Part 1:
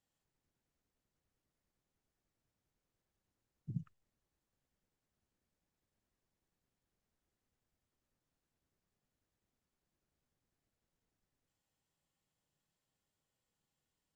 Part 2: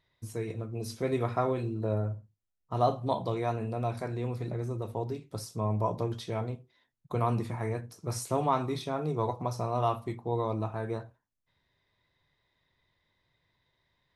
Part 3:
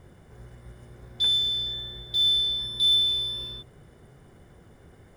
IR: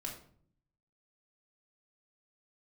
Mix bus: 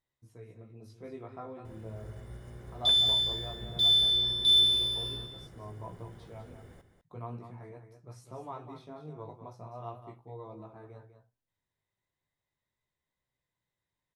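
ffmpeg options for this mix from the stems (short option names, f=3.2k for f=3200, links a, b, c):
-filter_complex "[0:a]volume=-8.5dB[a];[1:a]highshelf=f=3.8k:g=-9,flanger=delay=15:depth=4.8:speed=0.38,volume=-11.5dB,asplit=2[b][c];[c]volume=-9.5dB[d];[2:a]adelay=1650,volume=-1dB,asplit=2[e][f];[f]volume=-10dB[g];[d][g]amix=inputs=2:normalize=0,aecho=0:1:199:1[h];[a][b][e][h]amix=inputs=4:normalize=0"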